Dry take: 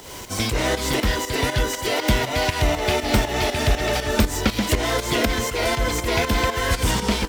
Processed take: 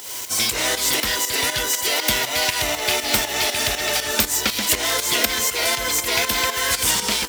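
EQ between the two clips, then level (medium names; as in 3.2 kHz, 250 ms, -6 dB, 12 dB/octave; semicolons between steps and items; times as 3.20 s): tilt EQ +3.5 dB/octave; -1.0 dB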